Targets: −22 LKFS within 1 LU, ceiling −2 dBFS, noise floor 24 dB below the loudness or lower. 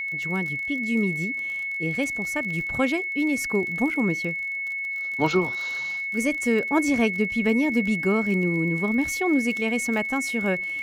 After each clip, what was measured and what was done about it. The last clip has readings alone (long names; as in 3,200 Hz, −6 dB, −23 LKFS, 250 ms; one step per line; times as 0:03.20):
crackle rate 34 per second; interfering tone 2,200 Hz; level of the tone −27 dBFS; integrated loudness −24.0 LKFS; sample peak −8.0 dBFS; target loudness −22.0 LKFS
→ click removal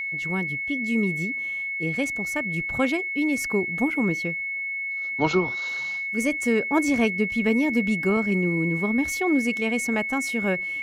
crackle rate 0 per second; interfering tone 2,200 Hz; level of the tone −27 dBFS
→ notch filter 2,200 Hz, Q 30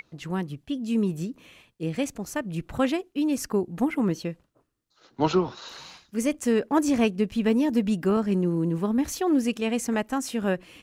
interfering tone none found; integrated loudness −26.5 LKFS; sample peak −8.5 dBFS; target loudness −22.0 LKFS
→ level +4.5 dB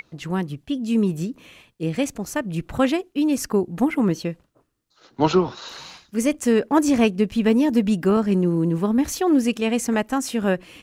integrated loudness −22.0 LKFS; sample peak −4.0 dBFS; background noise floor −65 dBFS